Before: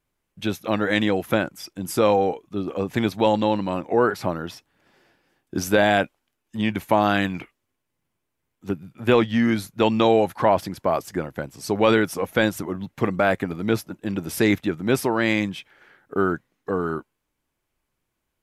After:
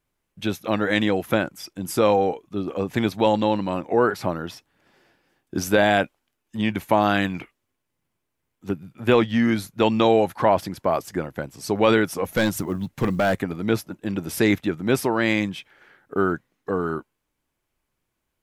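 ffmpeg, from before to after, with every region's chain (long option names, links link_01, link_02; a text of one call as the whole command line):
ffmpeg -i in.wav -filter_complex "[0:a]asettb=1/sr,asplit=3[link_01][link_02][link_03];[link_01]atrim=end=12.254[link_04];[link_02]atrim=start=12.25:end=13.42,asetpts=PTS-STARTPTS,afade=type=in:duration=0.004:curve=qsin,afade=type=out:start_time=1.166:duration=0.004:curve=qsin,bass=frequency=250:gain=5,treble=frequency=4000:gain=5,volume=15dB,asoftclip=hard,volume=-15dB,acrusher=bits=9:mode=log:mix=0:aa=0.000001[link_05];[link_03]atrim=start=13.416[link_06];[link_04][link_05]acrossfade=duration=0.004:curve1=hsin:curve2=qsin[link_07];[link_07][link_06]acrossfade=duration=0.004:curve1=qsin:curve2=hsin" out.wav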